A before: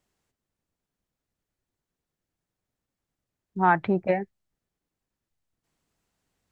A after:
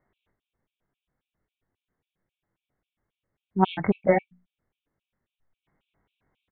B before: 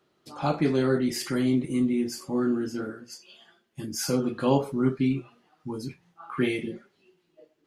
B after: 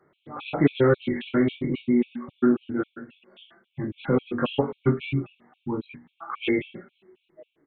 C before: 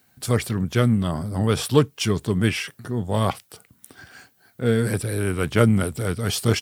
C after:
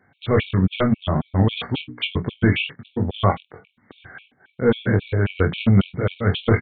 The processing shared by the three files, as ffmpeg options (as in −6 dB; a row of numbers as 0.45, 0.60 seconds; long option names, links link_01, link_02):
-filter_complex "[0:a]aeval=exprs='0.891*sin(PI/2*2.24*val(0)/0.891)':channel_layout=same,bandreject=frequency=60:width_type=h:width=6,bandreject=frequency=120:width_type=h:width=6,bandreject=frequency=180:width_type=h:width=6,bandreject=frequency=240:width_type=h:width=6,bandreject=frequency=300:width_type=h:width=6,asplit=2[link_01][link_02];[link_02]aecho=0:1:21|46:0.596|0.224[link_03];[link_01][link_03]amix=inputs=2:normalize=0,aresample=8000,aresample=44100,afftfilt=real='re*gt(sin(2*PI*3.7*pts/sr)*(1-2*mod(floor(b*sr/1024/2200),2)),0)':imag='im*gt(sin(2*PI*3.7*pts/sr)*(1-2*mod(floor(b*sr/1024/2200),2)),0)':win_size=1024:overlap=0.75,volume=-5.5dB"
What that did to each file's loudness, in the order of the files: −0.5, +1.5, +1.0 LU